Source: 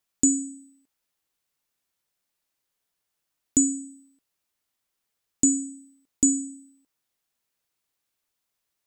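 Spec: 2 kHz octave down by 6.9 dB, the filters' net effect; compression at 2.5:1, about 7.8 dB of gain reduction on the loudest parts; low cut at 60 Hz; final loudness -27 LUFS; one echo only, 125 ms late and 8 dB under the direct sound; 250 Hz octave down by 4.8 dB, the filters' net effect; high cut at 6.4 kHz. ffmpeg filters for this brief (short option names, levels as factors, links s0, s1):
-af "highpass=60,lowpass=6400,equalizer=f=250:t=o:g=-5,equalizer=f=2000:t=o:g=-9,acompressor=threshold=0.0282:ratio=2.5,aecho=1:1:125:0.398,volume=2.51"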